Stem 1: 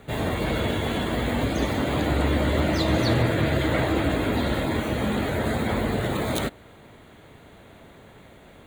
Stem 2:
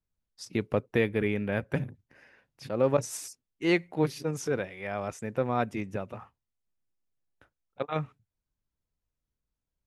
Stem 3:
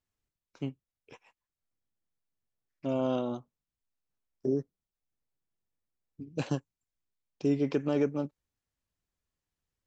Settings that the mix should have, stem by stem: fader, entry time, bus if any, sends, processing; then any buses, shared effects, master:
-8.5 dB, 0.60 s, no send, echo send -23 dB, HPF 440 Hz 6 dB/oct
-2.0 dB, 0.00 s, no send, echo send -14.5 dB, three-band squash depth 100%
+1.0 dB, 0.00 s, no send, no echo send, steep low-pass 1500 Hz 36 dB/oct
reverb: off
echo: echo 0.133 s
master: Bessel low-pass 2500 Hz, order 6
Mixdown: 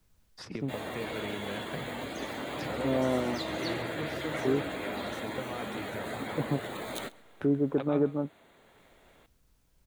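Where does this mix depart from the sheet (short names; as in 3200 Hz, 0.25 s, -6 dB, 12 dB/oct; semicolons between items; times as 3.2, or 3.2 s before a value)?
stem 2 -2.0 dB -> -11.5 dB; master: missing Bessel low-pass 2500 Hz, order 6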